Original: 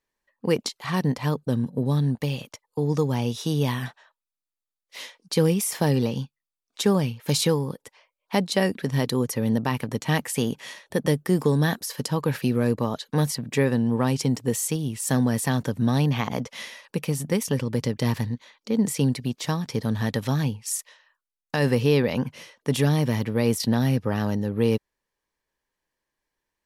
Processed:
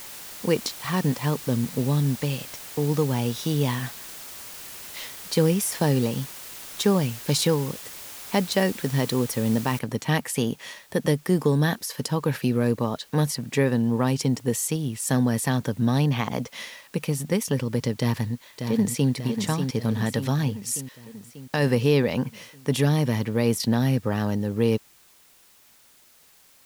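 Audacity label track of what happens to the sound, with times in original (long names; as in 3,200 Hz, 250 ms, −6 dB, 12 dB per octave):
9.790000	9.790000	noise floor change −40 dB −56 dB
17.970000	19.110000	delay throw 590 ms, feedback 60%, level −7 dB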